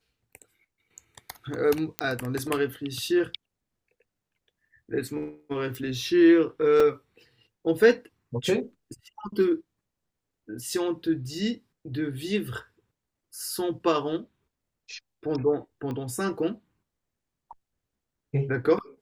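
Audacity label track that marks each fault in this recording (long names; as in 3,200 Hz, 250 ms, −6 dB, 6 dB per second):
1.990000	1.990000	click −10 dBFS
5.750000	5.750000	click
6.800000	6.800000	drop-out 3.9 ms
15.910000	15.910000	click −23 dBFS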